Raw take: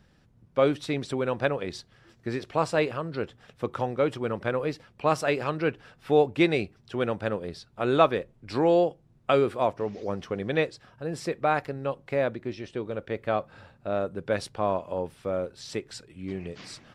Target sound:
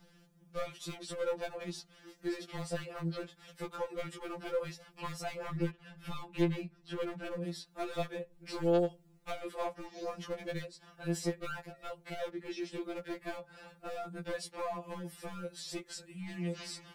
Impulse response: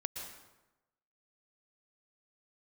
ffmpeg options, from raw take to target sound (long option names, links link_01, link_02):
-filter_complex "[0:a]asettb=1/sr,asplit=3[link_01][link_02][link_03];[link_01]atrim=end=5.364[link_04];[link_02]atrim=start=5.36:end=7.45,asetpts=PTS-STARTPTS,afade=type=in:duration=0.004:curve=qsin,afade=type=out:start_time=2.086:duration=0.004:curve=qsin,bass=frequency=250:gain=12,treble=frequency=4000:gain=-8[link_05];[link_03]atrim=start=7.446[link_06];[link_04][link_05]acrossfade=duration=0.004:curve1=hsin:curve2=qsin[link_07];[link_07][link_06]acrossfade=duration=0.004:curve1=qsin:curve2=hsin,acrossover=split=150|1100[link_08][link_09][link_10];[link_08]acompressor=threshold=-47dB:ratio=4[link_11];[link_09]acompressor=threshold=-34dB:ratio=4[link_12];[link_10]acompressor=threshold=-46dB:ratio=4[link_13];[link_11][link_12][link_13]amix=inputs=3:normalize=0,aeval=exprs='clip(val(0),-1,0.0211)':channel_layout=same,crystalizer=i=1.5:c=0,afftfilt=real='re*2.83*eq(mod(b,8),0)':imag='im*2.83*eq(mod(b,8),0)':win_size=2048:overlap=0.75,volume=1dB"